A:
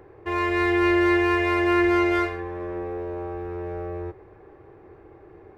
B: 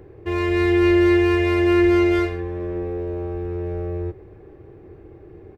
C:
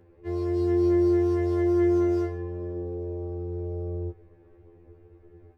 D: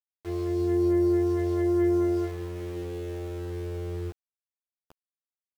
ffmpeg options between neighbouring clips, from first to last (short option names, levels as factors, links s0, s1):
-af "firequalizer=gain_entry='entry(150,0);entry(920,-14);entry(2900,-6)':delay=0.05:min_phase=1,volume=2.66"
-af "asubboost=boost=3:cutoff=66,afftfilt=real='re*2*eq(mod(b,4),0)':imag='im*2*eq(mod(b,4),0)':win_size=2048:overlap=0.75,volume=0.376"
-af "aeval=exprs='val(0)*gte(abs(val(0)),0.01)':c=same,volume=0.841"